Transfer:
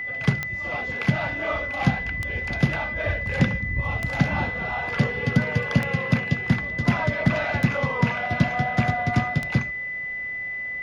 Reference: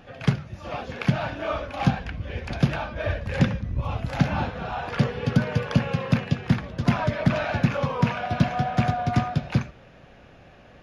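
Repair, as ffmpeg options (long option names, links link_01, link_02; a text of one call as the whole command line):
ffmpeg -i in.wav -af "adeclick=threshold=4,bandreject=frequency=2000:width=30" out.wav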